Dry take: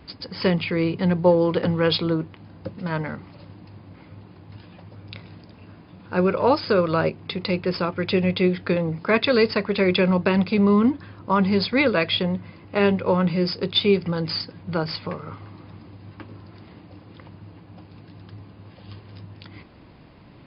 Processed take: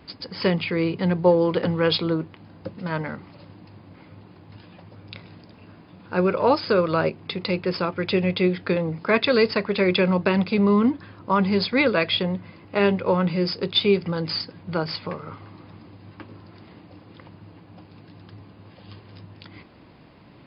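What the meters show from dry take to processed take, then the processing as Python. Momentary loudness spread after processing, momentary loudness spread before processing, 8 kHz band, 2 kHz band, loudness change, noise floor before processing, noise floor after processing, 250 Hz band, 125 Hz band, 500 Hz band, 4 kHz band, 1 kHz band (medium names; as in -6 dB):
15 LU, 15 LU, no reading, 0.0 dB, -0.5 dB, -48 dBFS, -49 dBFS, -1.0 dB, -1.5 dB, -0.5 dB, 0.0 dB, 0.0 dB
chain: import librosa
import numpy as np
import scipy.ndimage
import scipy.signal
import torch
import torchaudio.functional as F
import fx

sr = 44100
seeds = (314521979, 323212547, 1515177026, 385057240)

y = fx.low_shelf(x, sr, hz=81.0, db=-9.0)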